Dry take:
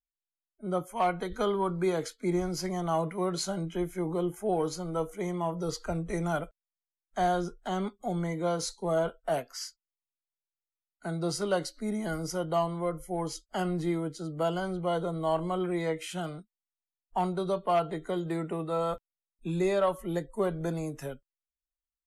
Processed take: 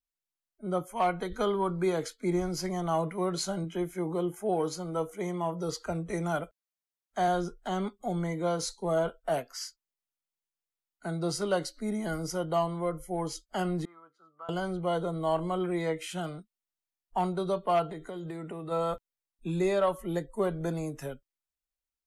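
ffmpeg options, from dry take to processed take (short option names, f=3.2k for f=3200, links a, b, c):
-filter_complex "[0:a]asettb=1/sr,asplit=3[a][b][c];[a]atrim=end=3.644[d];[b]atrim=start=3.64:end=7.28,asetpts=PTS-STARTPTS,afade=t=in:d=0.004:c=qsin,afade=t=out:st=3.636:d=0.004:c=qsin,highpass=f=98:p=1[e];[c]atrim=start=7.276[f];[d][e]acrossfade=d=0.004:c1=hsin:c2=qsin[g];[g][f]acrossfade=d=0.004:c1=qsin:c2=hsin,asettb=1/sr,asplit=3[h][i][j];[h]atrim=end=13.854[k];[i]atrim=start=13.85:end=14.49,asetpts=PTS-STARTPTS,afade=t=in:d=0.004:c=qsin,afade=t=out:st=0.636:d=0.004:c=qsin,bandpass=f=1.2k:t=q:w=8.4[l];[j]atrim=start=14.486[m];[k][l]acrossfade=d=0.004:c1=hsin:c2=qsin[n];[n][m]acrossfade=d=0.004:c1=qsin:c2=hsin,asplit=3[o][p][q];[o]afade=t=out:st=17.87:d=0.02[r];[p]acompressor=threshold=-35dB:ratio=6:attack=3.2:release=140:knee=1:detection=peak,afade=t=in:st=17.87:d=0.02,afade=t=out:st=18.7:d=0.02[s];[q]afade=t=in:st=18.7:d=0.02[t];[r][s][t]amix=inputs=3:normalize=0"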